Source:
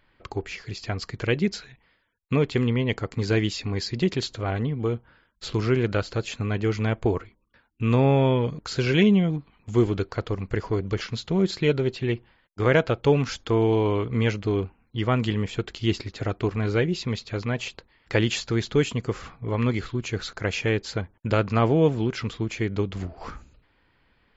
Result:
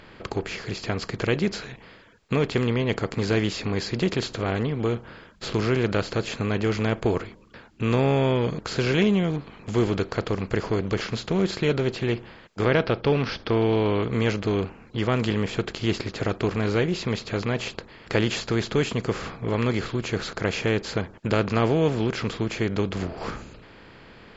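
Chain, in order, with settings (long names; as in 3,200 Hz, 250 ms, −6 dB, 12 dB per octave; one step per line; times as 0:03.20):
compressor on every frequency bin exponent 0.6
0:12.65–0:14.03: Butterworth low-pass 5,700 Hz 72 dB per octave
level −4 dB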